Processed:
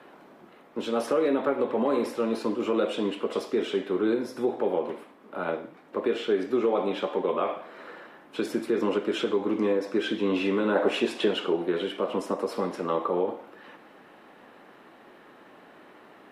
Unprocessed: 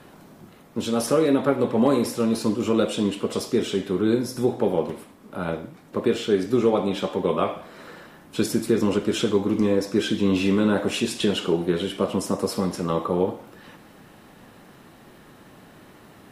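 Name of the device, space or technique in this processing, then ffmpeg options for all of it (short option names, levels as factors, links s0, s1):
DJ mixer with the lows and highs turned down: -filter_complex "[0:a]acrossover=split=260 3300:gain=0.0891 1 0.178[s0][s1][s2];[s0][s1][s2]amix=inputs=3:normalize=0,alimiter=limit=0.168:level=0:latency=1:release=75,asettb=1/sr,asplit=3[s3][s4][s5];[s3]atrim=end=10.754[s6];[s4]atrim=start=10.75:end=11.28,asetpts=PTS-STARTPTS,afade=t=in:d=0.004:c=qsin,afade=t=out:st=0.526:d=0.004:c=qsin,equalizer=f=670:t=o:w=2.3:g=5.5[s7];[s5]atrim=start=11.276[s8];[s6][s7]acrossfade=d=0.004:c1=hsin:c2=qsin[s9];[s9][s8]acrossfade=d=0.004:c1=qsin:c2=hsin"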